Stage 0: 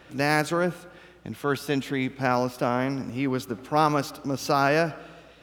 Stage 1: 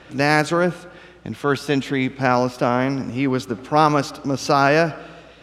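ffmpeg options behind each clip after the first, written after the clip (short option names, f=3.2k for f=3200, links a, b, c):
-af "lowpass=8.5k,volume=6dB"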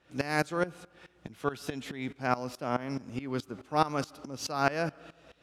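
-af "highshelf=f=9.1k:g=9,aeval=exprs='val(0)*pow(10,-18*if(lt(mod(-4.7*n/s,1),2*abs(-4.7)/1000),1-mod(-4.7*n/s,1)/(2*abs(-4.7)/1000),(mod(-4.7*n/s,1)-2*abs(-4.7)/1000)/(1-2*abs(-4.7)/1000))/20)':c=same,volume=-7dB"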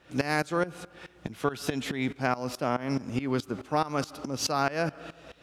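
-af "acompressor=threshold=-30dB:ratio=6,volume=7.5dB"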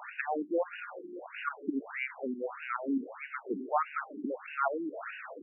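-af "aeval=exprs='val(0)+0.5*0.0251*sgn(val(0))':c=same,bass=f=250:g=-4,treble=f=4k:g=9,afftfilt=real='re*between(b*sr/1024,270*pow(2100/270,0.5+0.5*sin(2*PI*1.6*pts/sr))/1.41,270*pow(2100/270,0.5+0.5*sin(2*PI*1.6*pts/sr))*1.41)':imag='im*between(b*sr/1024,270*pow(2100/270,0.5+0.5*sin(2*PI*1.6*pts/sr))/1.41,270*pow(2100/270,0.5+0.5*sin(2*PI*1.6*pts/sr))*1.41)':win_size=1024:overlap=0.75"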